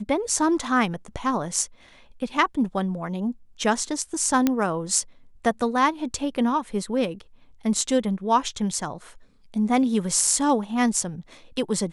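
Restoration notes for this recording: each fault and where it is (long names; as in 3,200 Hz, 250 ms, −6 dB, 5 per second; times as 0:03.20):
0:04.47: click −7 dBFS
0:10.27: drop-out 3.8 ms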